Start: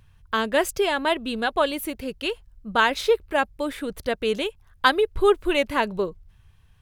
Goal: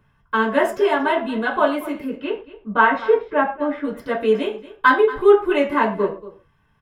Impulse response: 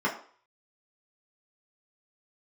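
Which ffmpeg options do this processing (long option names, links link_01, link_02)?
-filter_complex "[0:a]asettb=1/sr,asplit=3[link_01][link_02][link_03];[link_01]atrim=end=2.044[link_04];[link_02]atrim=start=2.04:end=3.85,asetpts=PTS-STARTPTS,afade=type=in:duration=0.004:curve=qsin,afade=type=out:start_time=1.806:duration=0.004:curve=qsin,lowpass=2700[link_05];[link_03]atrim=start=3.846[link_06];[link_04][link_05]acrossfade=duration=0.004:curve1=hsin:curve2=qsin[link_07];[link_07][link_06]acrossfade=duration=0.004:curve1=qsin:curve2=hsin,aecho=1:1:232:0.141[link_08];[1:a]atrim=start_sample=2205,afade=type=out:start_time=0.2:duration=0.01,atrim=end_sample=9261[link_09];[link_08][link_09]afir=irnorm=-1:irlink=0,volume=-8.5dB"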